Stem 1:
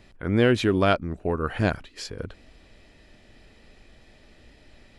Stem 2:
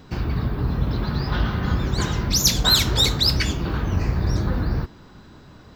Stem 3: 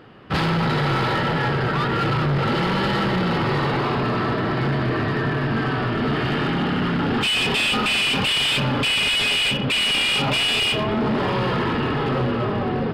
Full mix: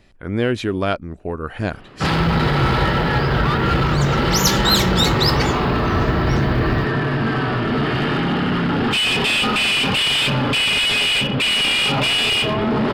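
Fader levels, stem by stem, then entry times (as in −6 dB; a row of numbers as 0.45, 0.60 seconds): 0.0, −0.5, +2.5 decibels; 0.00, 2.00, 1.70 seconds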